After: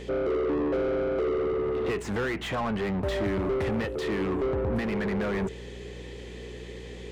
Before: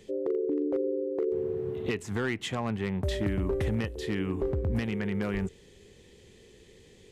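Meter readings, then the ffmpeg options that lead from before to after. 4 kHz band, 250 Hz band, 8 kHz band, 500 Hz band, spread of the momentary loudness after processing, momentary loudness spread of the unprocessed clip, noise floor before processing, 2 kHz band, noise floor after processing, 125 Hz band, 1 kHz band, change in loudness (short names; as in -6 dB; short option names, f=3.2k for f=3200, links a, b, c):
+1.0 dB, +1.5 dB, -0.5 dB, +3.5 dB, 14 LU, 3 LU, -56 dBFS, +3.5 dB, -41 dBFS, -1.5 dB, +7.5 dB, +2.5 dB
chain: -filter_complex "[0:a]asplit=2[a][b];[b]highpass=f=720:p=1,volume=26dB,asoftclip=type=tanh:threshold=-21dB[c];[a][c]amix=inputs=2:normalize=0,lowpass=f=1.3k:p=1,volume=-6dB,aeval=exprs='val(0)+0.00794*(sin(2*PI*60*n/s)+sin(2*PI*2*60*n/s)/2+sin(2*PI*3*60*n/s)/3+sin(2*PI*4*60*n/s)/4+sin(2*PI*5*60*n/s)/5)':c=same"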